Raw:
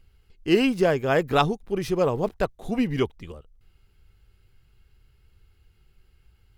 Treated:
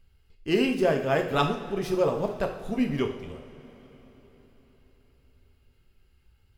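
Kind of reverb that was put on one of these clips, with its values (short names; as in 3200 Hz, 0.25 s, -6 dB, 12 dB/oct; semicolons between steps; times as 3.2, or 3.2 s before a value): two-slope reverb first 0.59 s, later 4.5 s, from -17 dB, DRR 3 dB; gain -4.5 dB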